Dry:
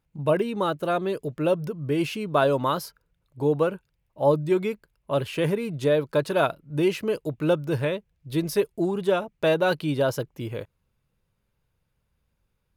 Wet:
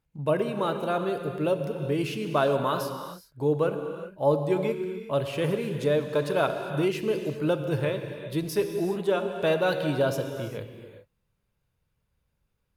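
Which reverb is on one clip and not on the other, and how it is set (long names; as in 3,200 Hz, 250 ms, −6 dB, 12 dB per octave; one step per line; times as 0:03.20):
reverb whose tail is shaped and stops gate 430 ms flat, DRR 6 dB
level −3 dB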